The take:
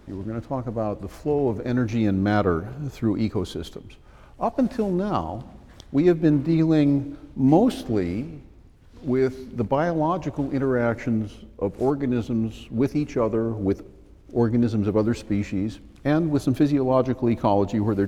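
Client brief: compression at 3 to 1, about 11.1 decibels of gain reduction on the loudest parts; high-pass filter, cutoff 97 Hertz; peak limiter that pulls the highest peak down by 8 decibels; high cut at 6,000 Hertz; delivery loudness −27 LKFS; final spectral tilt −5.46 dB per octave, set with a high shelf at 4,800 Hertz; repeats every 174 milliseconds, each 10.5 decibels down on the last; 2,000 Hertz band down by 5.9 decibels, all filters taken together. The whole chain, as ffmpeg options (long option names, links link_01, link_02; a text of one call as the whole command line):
ffmpeg -i in.wav -af "highpass=97,lowpass=6000,equalizer=frequency=2000:width_type=o:gain=-8,highshelf=frequency=4800:gain=-4,acompressor=threshold=-29dB:ratio=3,alimiter=limit=-23.5dB:level=0:latency=1,aecho=1:1:174|348|522:0.299|0.0896|0.0269,volume=7dB" out.wav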